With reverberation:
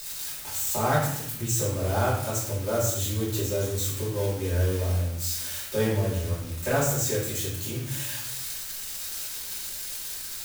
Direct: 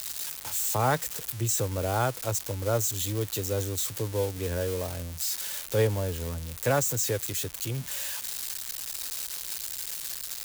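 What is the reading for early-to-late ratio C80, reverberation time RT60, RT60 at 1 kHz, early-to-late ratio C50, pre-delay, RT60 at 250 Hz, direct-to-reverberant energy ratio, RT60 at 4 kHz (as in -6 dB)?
6.0 dB, 0.75 s, 0.70 s, 3.0 dB, 3 ms, 1.2 s, -8.0 dB, 0.60 s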